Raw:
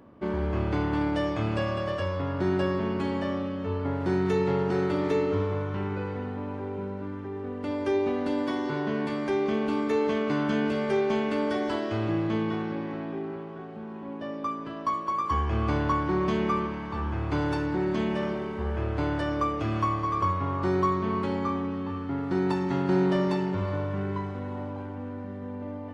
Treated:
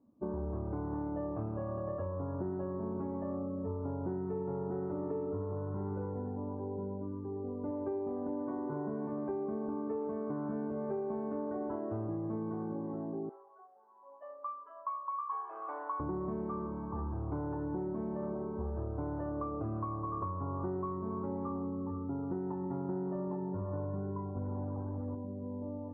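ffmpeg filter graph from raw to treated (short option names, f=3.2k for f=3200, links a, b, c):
-filter_complex "[0:a]asettb=1/sr,asplit=3[a][b][c];[a]atrim=end=13.294[d];[b]atrim=start=13.29:end=16,asetpts=PTS-STARTPTS,afade=t=in:d=0.004:c=qsin,afade=t=out:st=2.706:d=0.004:c=qsin,highpass=650,aemphasis=mode=production:type=riaa[e];[c]atrim=start=15.996[f];[d][e]acrossfade=d=0.004:c1=hsin:c2=qsin[g];[g][f]acrossfade=d=0.004:c1=qsin:c2=hsin,asettb=1/sr,asplit=3[h][i][j];[h]atrim=end=24.364[k];[i]atrim=start=24.36:end=25.15,asetpts=PTS-STARTPTS,afade=t=in:d=0.004:c=qsin,afade=t=out:st=0.786:d=0.004:c=qsin,lowshelf=f=140:g=9,acrusher=bits=5:mix=0:aa=0.5[l];[j]atrim=start=25.146[m];[k][l]acrossfade=d=0.004:c1=hsin:c2=qsin[n];[n][m]acrossfade=d=0.004:c1=qsin:c2=hsin,afftdn=nr=18:nf=-38,lowpass=f=1.1k:w=0.5412,lowpass=f=1.1k:w=1.3066,acompressor=threshold=-30dB:ratio=6,volume=-3.5dB"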